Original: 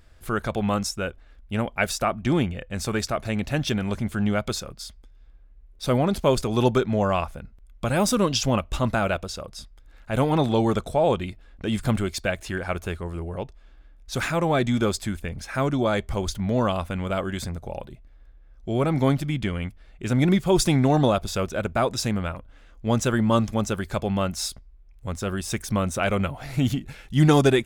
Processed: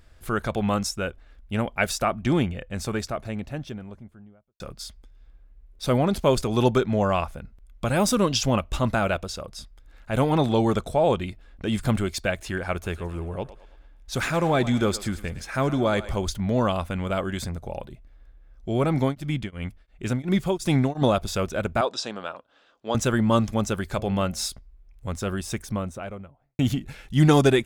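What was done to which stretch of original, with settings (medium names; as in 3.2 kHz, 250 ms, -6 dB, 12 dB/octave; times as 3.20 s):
2.32–4.60 s: studio fade out
12.74–16.16 s: thinning echo 110 ms, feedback 52%, level -14 dB
18.98–21.02 s: tremolo of two beating tones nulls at 2.8 Hz
21.81–22.95 s: cabinet simulation 420–7000 Hz, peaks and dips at 2.1 kHz -10 dB, 3.6 kHz +3 dB, 6.5 kHz -6 dB
23.88–24.44 s: de-hum 107.6 Hz, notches 7
25.17–26.59 s: studio fade out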